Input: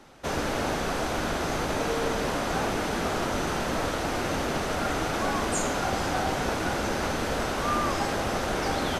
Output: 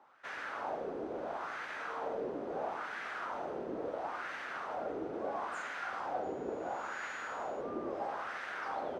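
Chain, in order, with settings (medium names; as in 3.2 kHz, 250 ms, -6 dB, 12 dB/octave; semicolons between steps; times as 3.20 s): 6.22–7.60 s: whistle 6.8 kHz -35 dBFS; LFO band-pass sine 0.74 Hz 380–1800 Hz; trim -4 dB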